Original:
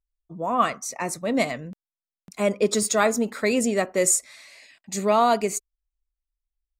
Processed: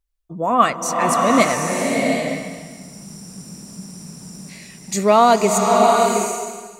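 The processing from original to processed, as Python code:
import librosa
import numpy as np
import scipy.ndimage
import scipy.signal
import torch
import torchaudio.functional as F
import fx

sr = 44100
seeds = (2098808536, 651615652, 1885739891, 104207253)

y = fx.spec_freeze(x, sr, seeds[0], at_s=2.29, hold_s=2.21)
y = fx.rev_bloom(y, sr, seeds[1], attack_ms=740, drr_db=0.0)
y = F.gain(torch.from_numpy(y), 6.5).numpy()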